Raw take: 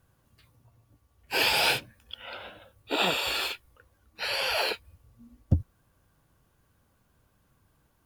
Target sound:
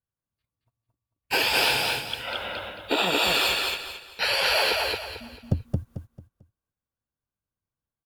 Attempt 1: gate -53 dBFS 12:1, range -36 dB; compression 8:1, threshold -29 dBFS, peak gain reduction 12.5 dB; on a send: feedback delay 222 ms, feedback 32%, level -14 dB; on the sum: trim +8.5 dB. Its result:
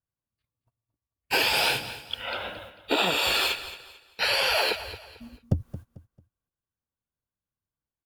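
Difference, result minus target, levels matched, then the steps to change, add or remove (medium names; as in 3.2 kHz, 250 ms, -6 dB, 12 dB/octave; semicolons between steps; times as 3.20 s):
echo-to-direct -11.5 dB
change: feedback delay 222 ms, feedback 32%, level -2.5 dB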